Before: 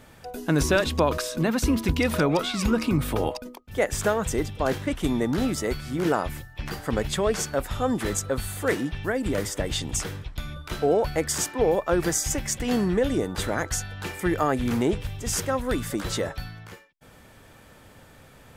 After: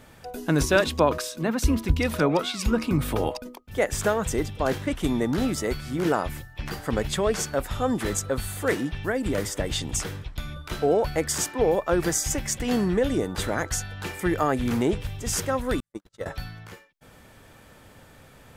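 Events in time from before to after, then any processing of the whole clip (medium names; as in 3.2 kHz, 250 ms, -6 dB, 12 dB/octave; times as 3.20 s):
0.65–2.91 s: three bands expanded up and down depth 100%
15.80–16.26 s: gate -25 dBFS, range -57 dB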